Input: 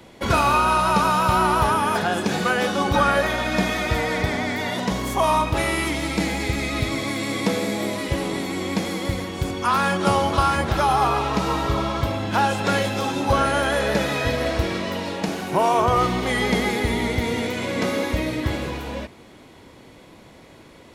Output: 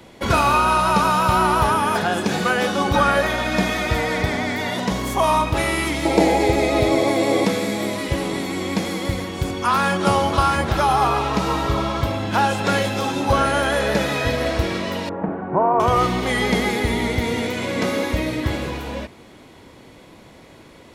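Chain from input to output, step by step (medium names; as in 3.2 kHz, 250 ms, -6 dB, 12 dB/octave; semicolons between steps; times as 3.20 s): 6.05–7.45 s: high-order bell 550 Hz +12 dB; 15.09–15.80 s: low-pass 1.4 kHz 24 dB/octave; trim +1.5 dB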